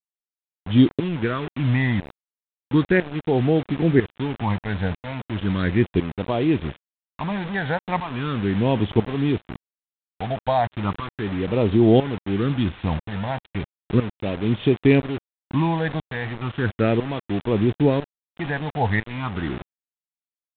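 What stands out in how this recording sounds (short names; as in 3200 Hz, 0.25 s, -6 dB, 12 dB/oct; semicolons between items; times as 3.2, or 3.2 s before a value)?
phasing stages 8, 0.36 Hz, lowest notch 350–1600 Hz; tremolo saw up 1 Hz, depth 80%; a quantiser's noise floor 6-bit, dither none; G.726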